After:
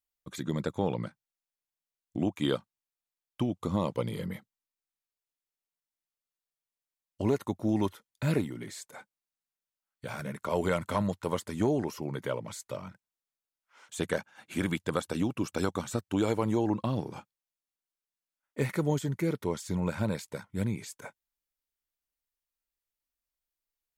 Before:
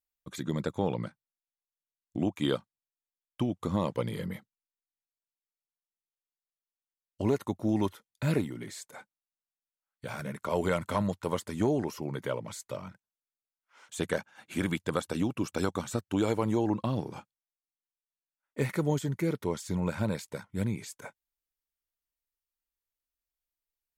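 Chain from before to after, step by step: 3.5–4.22 bell 1700 Hz -6.5 dB 0.33 oct

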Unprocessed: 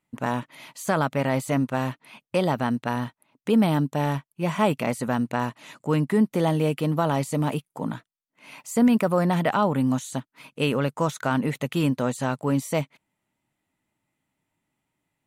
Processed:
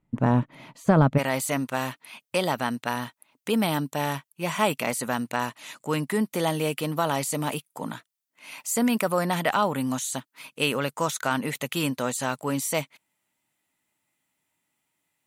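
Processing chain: tilt -3.5 dB/oct, from 1.17 s +2.5 dB/oct

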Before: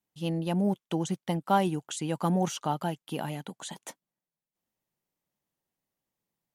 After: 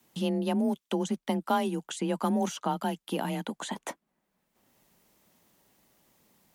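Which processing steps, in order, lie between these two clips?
frequency shift +28 Hz; three-band squash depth 70%

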